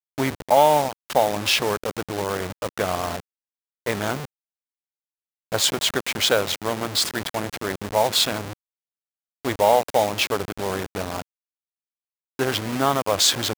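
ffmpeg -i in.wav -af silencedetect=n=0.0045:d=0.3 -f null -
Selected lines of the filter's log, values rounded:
silence_start: 3.20
silence_end: 3.86 | silence_duration: 0.66
silence_start: 4.25
silence_end: 5.52 | silence_duration: 1.27
silence_start: 8.53
silence_end: 9.45 | silence_duration: 0.91
silence_start: 11.22
silence_end: 12.39 | silence_duration: 1.17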